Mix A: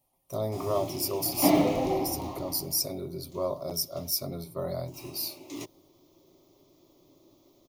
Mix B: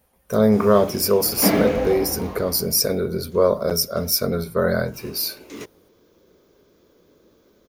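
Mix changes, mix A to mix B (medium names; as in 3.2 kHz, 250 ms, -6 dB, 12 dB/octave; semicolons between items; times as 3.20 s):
speech +8.0 dB; master: remove static phaser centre 310 Hz, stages 8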